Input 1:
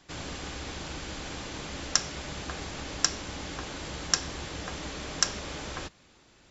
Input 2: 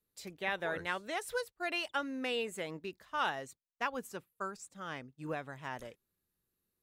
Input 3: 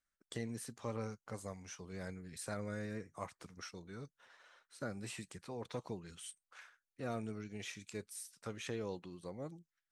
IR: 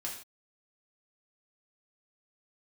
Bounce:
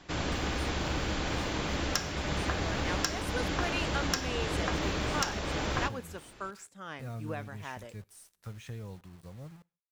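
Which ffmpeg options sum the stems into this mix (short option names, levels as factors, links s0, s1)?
-filter_complex "[0:a]lowpass=f=3200:p=1,aeval=exprs='0.355*sin(PI/2*1.58*val(0)/0.355)':c=same,volume=0.75,asplit=2[s0][s1];[s1]volume=0.237[s2];[1:a]dynaudnorm=f=540:g=3:m=3.16,adelay=2000,volume=0.282,asplit=2[s3][s4];[s4]volume=0.133[s5];[2:a]asubboost=boost=10.5:cutoff=100,acrusher=bits=8:mix=0:aa=0.000001,adynamicequalizer=threshold=0.00112:dfrequency=2100:dqfactor=0.7:tfrequency=2100:tqfactor=0.7:attack=5:release=100:ratio=0.375:range=2:mode=cutabove:tftype=highshelf,volume=0.596,asplit=2[s6][s7];[s7]volume=0.0891[s8];[3:a]atrim=start_sample=2205[s9];[s2][s5][s8]amix=inputs=3:normalize=0[s10];[s10][s9]afir=irnorm=-1:irlink=0[s11];[s0][s3][s6][s11]amix=inputs=4:normalize=0,alimiter=limit=0.15:level=0:latency=1:release=372"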